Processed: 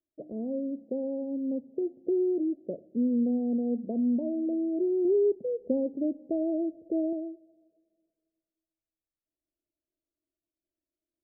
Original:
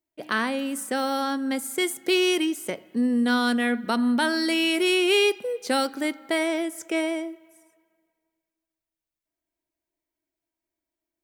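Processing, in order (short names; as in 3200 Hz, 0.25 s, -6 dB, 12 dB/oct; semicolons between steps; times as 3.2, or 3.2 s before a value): steep low-pass 640 Hz 72 dB/oct; 5.05–7.13 low shelf 210 Hz +8.5 dB; gain -3.5 dB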